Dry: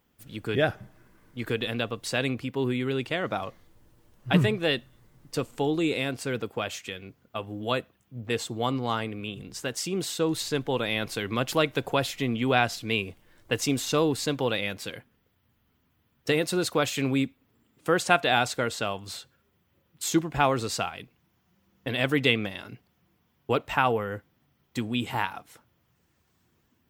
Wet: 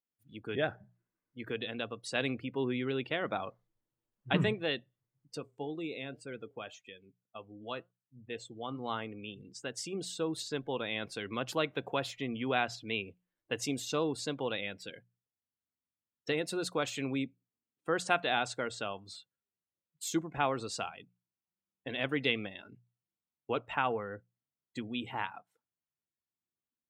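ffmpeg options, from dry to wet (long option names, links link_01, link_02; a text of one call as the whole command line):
ffmpeg -i in.wav -filter_complex "[0:a]asplit=3[link_01][link_02][link_03];[link_01]afade=type=out:start_time=5.36:duration=0.02[link_04];[link_02]flanger=delay=5.3:depth=2.4:regen=87:speed=1.9:shape=triangular,afade=type=in:start_time=5.36:duration=0.02,afade=type=out:start_time=8.78:duration=0.02[link_05];[link_03]afade=type=in:start_time=8.78:duration=0.02[link_06];[link_04][link_05][link_06]amix=inputs=3:normalize=0,asplit=3[link_07][link_08][link_09];[link_07]atrim=end=2.152[link_10];[link_08]atrim=start=2.148:end=4.532,asetpts=PTS-STARTPTS,volume=3dB[link_11];[link_09]atrim=start=4.528[link_12];[link_10][link_11]acrossfade=duration=0.004:curve1=hsin:curve2=hsin[link_13];[link_13][link_12]acrossfade=duration=0.004:curve1=hsin:curve2=hsin,lowshelf=frequency=80:gain=-12,afftdn=noise_reduction=23:noise_floor=-42,bandreject=frequency=60:width_type=h:width=6,bandreject=frequency=120:width_type=h:width=6,bandreject=frequency=180:width_type=h:width=6,volume=-7.5dB" out.wav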